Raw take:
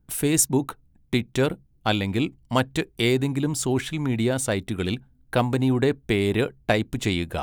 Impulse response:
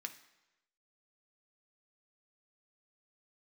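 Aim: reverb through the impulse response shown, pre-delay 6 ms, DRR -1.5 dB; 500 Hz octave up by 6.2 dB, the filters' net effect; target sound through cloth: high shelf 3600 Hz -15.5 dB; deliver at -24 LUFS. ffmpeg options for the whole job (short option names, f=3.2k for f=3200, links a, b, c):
-filter_complex "[0:a]equalizer=f=500:t=o:g=8.5,asplit=2[a][b];[1:a]atrim=start_sample=2205,adelay=6[c];[b][c]afir=irnorm=-1:irlink=0,volume=3.5dB[d];[a][d]amix=inputs=2:normalize=0,highshelf=f=3.6k:g=-15.5,volume=-3.5dB"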